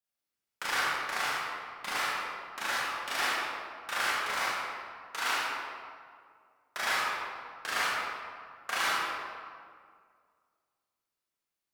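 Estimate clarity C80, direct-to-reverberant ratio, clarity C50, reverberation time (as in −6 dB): −1.0 dB, −8.5 dB, −4.0 dB, 2.0 s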